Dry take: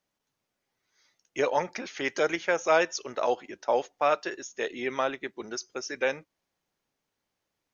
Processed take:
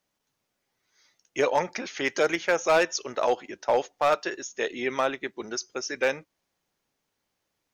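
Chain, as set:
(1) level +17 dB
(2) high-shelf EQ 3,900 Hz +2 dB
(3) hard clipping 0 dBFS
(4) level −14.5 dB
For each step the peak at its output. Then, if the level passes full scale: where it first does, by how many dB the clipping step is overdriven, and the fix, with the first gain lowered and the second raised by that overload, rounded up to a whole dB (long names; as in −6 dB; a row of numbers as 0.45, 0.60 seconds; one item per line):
+6.0, +6.5, 0.0, −14.5 dBFS
step 1, 6.5 dB
step 1 +10 dB, step 4 −7.5 dB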